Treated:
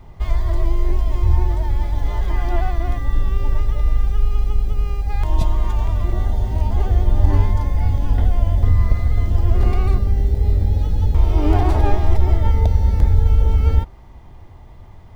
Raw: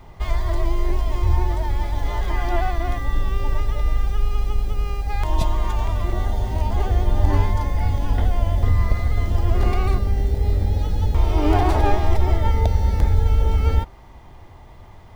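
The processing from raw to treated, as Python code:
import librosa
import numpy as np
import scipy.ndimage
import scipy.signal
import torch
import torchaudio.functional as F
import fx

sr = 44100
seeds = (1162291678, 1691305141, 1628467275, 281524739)

y = fx.low_shelf(x, sr, hz=320.0, db=7.0)
y = y * 10.0 ** (-3.5 / 20.0)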